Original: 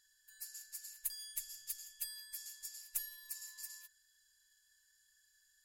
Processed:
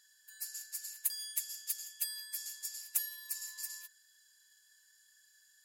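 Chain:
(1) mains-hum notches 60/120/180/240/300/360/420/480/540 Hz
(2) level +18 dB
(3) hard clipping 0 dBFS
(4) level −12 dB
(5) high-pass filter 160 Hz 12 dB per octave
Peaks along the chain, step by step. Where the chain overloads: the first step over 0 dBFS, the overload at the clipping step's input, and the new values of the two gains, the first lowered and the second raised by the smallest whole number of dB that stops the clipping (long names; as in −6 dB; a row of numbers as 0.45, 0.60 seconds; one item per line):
−22.0, −4.0, −4.0, −16.0, −16.0 dBFS
no step passes full scale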